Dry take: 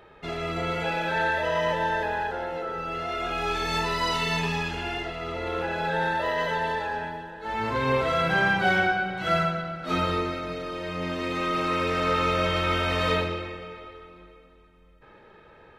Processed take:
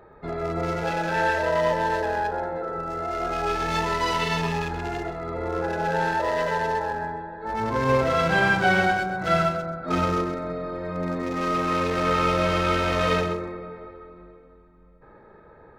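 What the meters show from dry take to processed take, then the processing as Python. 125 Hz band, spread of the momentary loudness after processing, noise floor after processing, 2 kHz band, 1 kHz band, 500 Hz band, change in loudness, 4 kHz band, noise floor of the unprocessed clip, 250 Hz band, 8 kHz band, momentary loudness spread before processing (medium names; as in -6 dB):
+2.5 dB, 10 LU, -51 dBFS, +0.5 dB, +2.5 dB, +3.0 dB, +2.0 dB, -2.0 dB, -53 dBFS, +3.0 dB, +2.0 dB, 10 LU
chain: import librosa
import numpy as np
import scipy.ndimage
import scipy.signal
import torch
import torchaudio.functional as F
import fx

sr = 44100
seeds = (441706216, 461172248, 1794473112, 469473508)

p1 = fx.wiener(x, sr, points=15)
p2 = p1 + fx.echo_single(p1, sr, ms=130, db=-10.0, dry=0)
y = F.gain(torch.from_numpy(p2), 3.0).numpy()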